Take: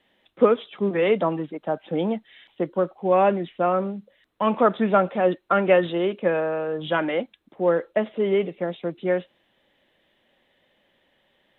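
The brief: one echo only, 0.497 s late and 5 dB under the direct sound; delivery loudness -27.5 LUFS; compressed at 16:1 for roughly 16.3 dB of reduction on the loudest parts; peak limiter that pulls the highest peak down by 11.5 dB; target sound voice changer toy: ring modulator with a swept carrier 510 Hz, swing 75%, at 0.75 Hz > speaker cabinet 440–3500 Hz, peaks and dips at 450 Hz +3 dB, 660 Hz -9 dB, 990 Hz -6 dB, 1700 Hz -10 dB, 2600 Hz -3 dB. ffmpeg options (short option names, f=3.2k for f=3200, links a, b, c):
-af "acompressor=threshold=-28dB:ratio=16,alimiter=level_in=4dB:limit=-24dB:level=0:latency=1,volume=-4dB,aecho=1:1:497:0.562,aeval=exprs='val(0)*sin(2*PI*510*n/s+510*0.75/0.75*sin(2*PI*0.75*n/s))':c=same,highpass=440,equalizer=f=450:t=q:w=4:g=3,equalizer=f=660:t=q:w=4:g=-9,equalizer=f=990:t=q:w=4:g=-6,equalizer=f=1.7k:t=q:w=4:g=-10,equalizer=f=2.6k:t=q:w=4:g=-3,lowpass=f=3.5k:w=0.5412,lowpass=f=3.5k:w=1.3066,volume=18dB"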